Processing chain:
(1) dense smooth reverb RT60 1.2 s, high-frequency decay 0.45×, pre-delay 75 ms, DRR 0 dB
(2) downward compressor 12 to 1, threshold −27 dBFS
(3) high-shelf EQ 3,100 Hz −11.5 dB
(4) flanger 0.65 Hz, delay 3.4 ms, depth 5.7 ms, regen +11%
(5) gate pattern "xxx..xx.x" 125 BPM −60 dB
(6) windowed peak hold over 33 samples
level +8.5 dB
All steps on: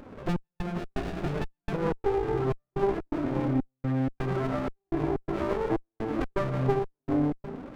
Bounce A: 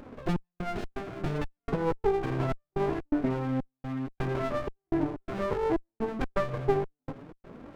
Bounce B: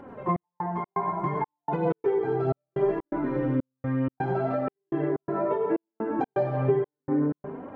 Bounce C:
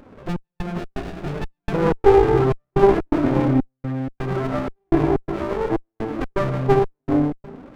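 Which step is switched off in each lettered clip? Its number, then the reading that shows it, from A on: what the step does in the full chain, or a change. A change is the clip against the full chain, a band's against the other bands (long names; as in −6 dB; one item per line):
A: 1, change in momentary loudness spread +3 LU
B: 6, distortion level −2 dB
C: 2, average gain reduction 6.5 dB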